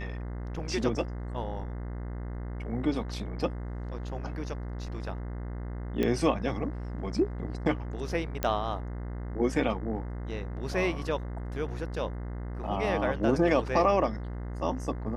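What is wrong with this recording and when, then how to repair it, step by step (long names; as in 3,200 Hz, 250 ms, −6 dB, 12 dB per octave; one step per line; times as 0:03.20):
mains buzz 60 Hz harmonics 35 −36 dBFS
0:06.03: click −16 dBFS
0:08.43: click −13 dBFS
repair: click removal
hum removal 60 Hz, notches 35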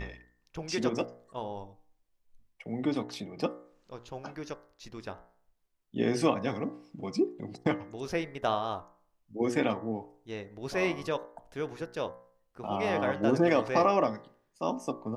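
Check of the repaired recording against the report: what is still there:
none of them is left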